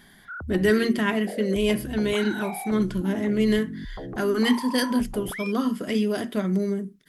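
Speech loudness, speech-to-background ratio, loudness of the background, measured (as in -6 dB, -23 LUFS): -25.0 LUFS, 11.5 dB, -36.5 LUFS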